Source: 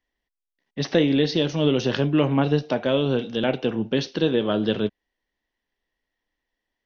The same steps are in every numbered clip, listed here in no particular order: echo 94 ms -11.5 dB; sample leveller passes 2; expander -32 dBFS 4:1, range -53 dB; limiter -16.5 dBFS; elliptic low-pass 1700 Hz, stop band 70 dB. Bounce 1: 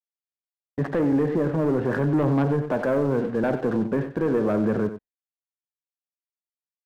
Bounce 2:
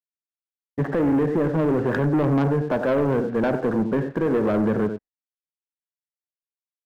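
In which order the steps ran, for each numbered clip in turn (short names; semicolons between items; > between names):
elliptic low-pass > expander > sample leveller > limiter > echo; expander > elliptic low-pass > limiter > echo > sample leveller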